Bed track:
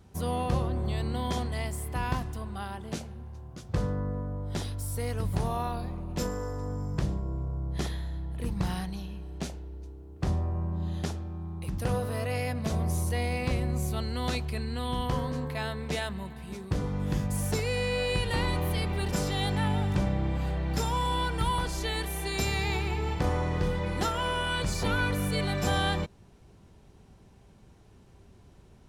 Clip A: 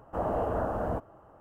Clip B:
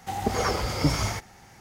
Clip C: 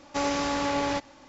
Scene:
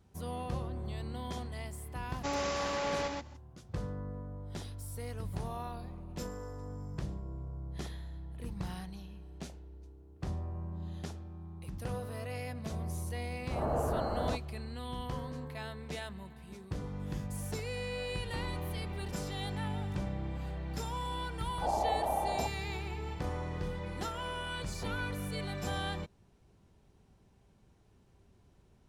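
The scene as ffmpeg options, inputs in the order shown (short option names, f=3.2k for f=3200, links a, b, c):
-filter_complex "[1:a]asplit=2[a][b];[0:a]volume=-9dB[c];[3:a]aecho=1:1:125:0.668[d];[a]dynaudnorm=f=130:g=3:m=15dB[e];[b]lowpass=f=830:t=q:w=8.4[f];[d]atrim=end=1.28,asetpts=PTS-STARTPTS,volume=-7.5dB,afade=t=in:d=0.004:c=hsin,afade=t=out:st=1.276:d=0.004:c=hsin,adelay=2090[g];[e]atrim=end=1.4,asetpts=PTS-STARTPTS,volume=-17.5dB,afade=t=in:d=0.004:c=hsin,afade=t=out:st=1.396:d=0.004:c=hsin,adelay=13370[h];[f]atrim=end=1.4,asetpts=PTS-STARTPTS,volume=-11.5dB,afade=t=in:d=0.004:c=hsin,afade=t=out:st=1.396:d=0.004:c=hsin,adelay=947268S[i];[c][g][h][i]amix=inputs=4:normalize=0"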